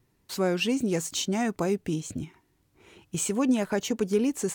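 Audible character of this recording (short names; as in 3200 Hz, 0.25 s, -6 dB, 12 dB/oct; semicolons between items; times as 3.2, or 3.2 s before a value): noise floor -69 dBFS; spectral tilt -4.5 dB/oct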